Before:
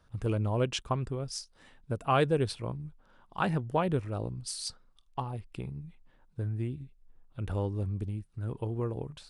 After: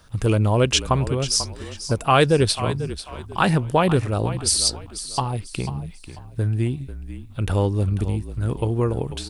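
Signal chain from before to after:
high-shelf EQ 2,800 Hz +9.5 dB
in parallel at −3 dB: brickwall limiter −22.5 dBFS, peak gain reduction 10.5 dB
on the sum: echo with shifted repeats 492 ms, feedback 31%, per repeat −39 Hz, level −12.5 dB
level +6.5 dB

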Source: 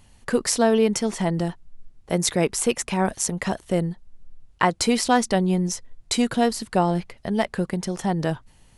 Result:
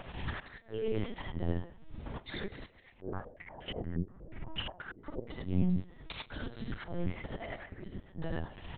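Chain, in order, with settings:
sub-octave generator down 1 octave, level −4 dB
high-pass filter 59 Hz 12 dB per octave
upward compression, threshold −22 dBFS
brickwall limiter −14.5 dBFS, peak gain reduction 10.5 dB
downward compressor 12 to 1, threshold −31 dBFS, peak gain reduction 13 dB
gate with flip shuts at −24 dBFS, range −31 dB
far-end echo of a speakerphone 140 ms, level −13 dB
reverb whose tail is shaped and stops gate 120 ms rising, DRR −3.5 dB
linear-prediction vocoder at 8 kHz pitch kept
0:03.01–0:05.30: low-pass on a step sequencer 8.4 Hz 390–2,900 Hz
level −2.5 dB

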